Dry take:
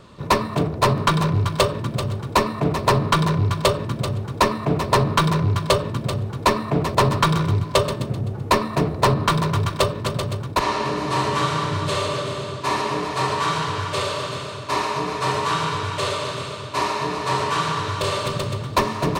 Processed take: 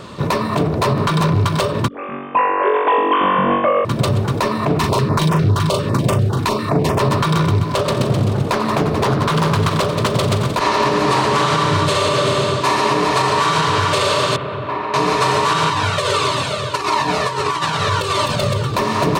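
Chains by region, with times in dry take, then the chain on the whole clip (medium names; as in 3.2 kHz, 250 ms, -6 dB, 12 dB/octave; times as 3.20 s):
1.88–3.85 s: formants replaced by sine waves + flutter echo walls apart 3.6 m, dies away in 1.4 s + upward expansion 2.5:1, over -21 dBFS
4.79–7.00 s: doubling 39 ms -5.5 dB + step-sequenced notch 10 Hz 560–4100 Hz
7.77–11.56 s: multi-head delay 87 ms, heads all three, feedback 60%, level -19 dB + loudspeaker Doppler distortion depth 0.42 ms
14.36–14.94 s: compression 5:1, threshold -30 dBFS + distance through air 490 m
15.70–18.74 s: compressor with a negative ratio -25 dBFS, ratio -0.5 + Shepard-style flanger falling 1.6 Hz
whole clip: bass shelf 63 Hz -12 dB; compression 6:1, threshold -24 dBFS; loudness maximiser +18.5 dB; trim -5.5 dB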